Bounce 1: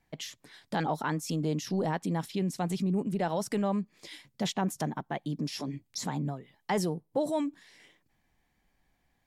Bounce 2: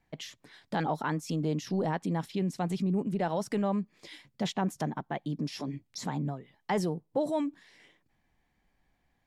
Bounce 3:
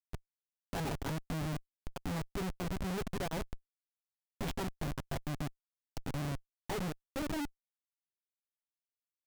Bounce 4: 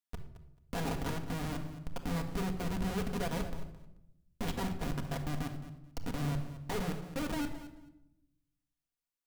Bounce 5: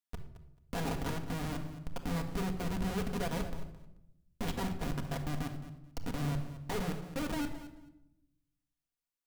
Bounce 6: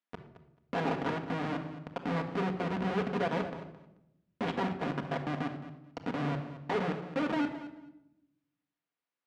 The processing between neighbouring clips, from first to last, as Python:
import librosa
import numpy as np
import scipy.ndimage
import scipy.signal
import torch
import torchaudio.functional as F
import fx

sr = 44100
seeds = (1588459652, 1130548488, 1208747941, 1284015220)

y1 = fx.high_shelf(x, sr, hz=5900.0, db=-8.5)
y2 = y1 + 0.75 * np.pad(y1, (int(7.3 * sr / 1000.0), 0))[:len(y1)]
y2 = fx.chopper(y2, sr, hz=0.51, depth_pct=65, duty_pct=80)
y2 = fx.schmitt(y2, sr, flips_db=-28.5)
y2 = y2 * librosa.db_to_amplitude(-3.0)
y3 = fx.echo_feedback(y2, sr, ms=218, feedback_pct=17, wet_db=-14.5)
y3 = fx.room_shoebox(y3, sr, seeds[0], volume_m3=2700.0, walls='furnished', distance_m=1.8)
y4 = y3
y5 = fx.bandpass_edges(y4, sr, low_hz=220.0, high_hz=2600.0)
y5 = y5 * librosa.db_to_amplitude(6.5)